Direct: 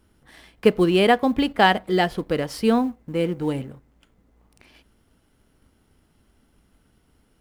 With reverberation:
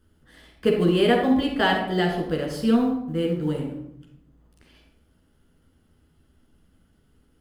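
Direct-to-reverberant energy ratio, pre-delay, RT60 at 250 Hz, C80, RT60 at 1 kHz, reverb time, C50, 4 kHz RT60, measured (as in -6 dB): -1.0 dB, 13 ms, 1.1 s, 7.0 dB, 0.65 s, 0.70 s, 3.5 dB, 0.50 s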